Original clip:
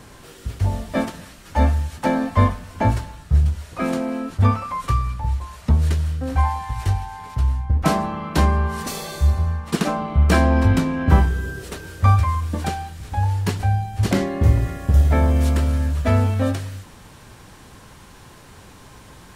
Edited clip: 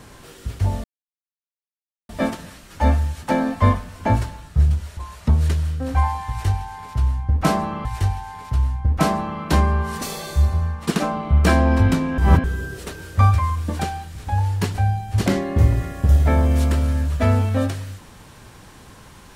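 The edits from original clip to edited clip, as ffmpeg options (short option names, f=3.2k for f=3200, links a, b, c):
-filter_complex "[0:a]asplit=6[a][b][c][d][e][f];[a]atrim=end=0.84,asetpts=PTS-STARTPTS,afade=t=out:st=0.836:d=0.004:c=hsin,apad=pad_dur=1.25[g];[b]atrim=start=0.84:end=3.722,asetpts=PTS-STARTPTS,afade=t=in:d=0.004:c=hsin[h];[c]atrim=start=5.378:end=8.262[i];[d]atrim=start=6.698:end=11.032[j];[e]atrim=start=11.028:end=11.292,asetpts=PTS-STARTPTS,areverse[k];[f]atrim=start=11.288[l];[g][h]concat=n=2:v=0:a=1[m];[m][i]acrossfade=d=0.004:c1=hsin:c2=hsin[n];[n][j]acrossfade=d=0.004:c1=hsin:c2=hsin[o];[o][k]acrossfade=d=0.004:c1=hsin:c2=hsin[p];[p][l]acrossfade=d=0.004:c1=hsin:c2=hsin"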